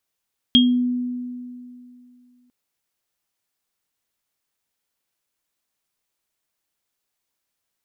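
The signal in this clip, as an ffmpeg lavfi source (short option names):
-f lavfi -i "aevalsrc='0.266*pow(10,-3*t/2.58)*sin(2*PI*247*t)+0.398*pow(10,-3*t/0.26)*sin(2*PI*3250*t)':d=1.95:s=44100"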